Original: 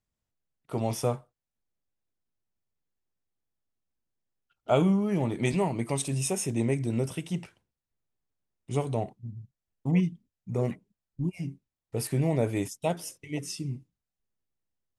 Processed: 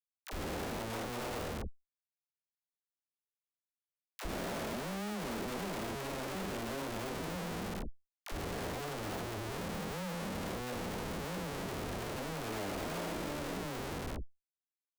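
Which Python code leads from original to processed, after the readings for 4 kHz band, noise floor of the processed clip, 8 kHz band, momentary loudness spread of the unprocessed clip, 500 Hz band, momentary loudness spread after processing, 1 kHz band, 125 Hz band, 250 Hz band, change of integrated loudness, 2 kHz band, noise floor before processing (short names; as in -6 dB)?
0.0 dB, under -85 dBFS, -8.5 dB, 12 LU, -8.0 dB, 4 LU, -2.5 dB, -13.0 dB, -10.0 dB, -9.5 dB, +1.0 dB, under -85 dBFS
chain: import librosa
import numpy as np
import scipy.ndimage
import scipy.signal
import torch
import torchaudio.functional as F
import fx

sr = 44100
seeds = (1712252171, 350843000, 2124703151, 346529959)

y = fx.spec_blur(x, sr, span_ms=540.0)
y = scipy.signal.sosfilt(scipy.signal.butter(2, 2500.0, 'lowpass', fs=sr, output='sos'), y)
y = fx.low_shelf(y, sr, hz=450.0, db=5.5)
y = 10.0 ** (-34.5 / 20.0) * np.tanh(y / 10.0 ** (-34.5 / 20.0))
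y = scipy.signal.sosfilt(scipy.signal.butter(2, 44.0, 'highpass', fs=sr, output='sos'), y)
y = fx.schmitt(y, sr, flips_db=-52.5)
y = fx.peak_eq(y, sr, hz=130.0, db=-15.0, octaves=0.67)
y = fx.dispersion(y, sr, late='lows', ms=60.0, hz=550.0)
y = fx.env_flatten(y, sr, amount_pct=50)
y = y * librosa.db_to_amplitude(2.0)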